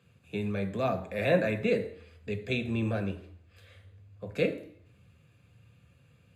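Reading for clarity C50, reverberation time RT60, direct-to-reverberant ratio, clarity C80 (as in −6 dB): 13.0 dB, 0.60 s, 6.0 dB, 15.5 dB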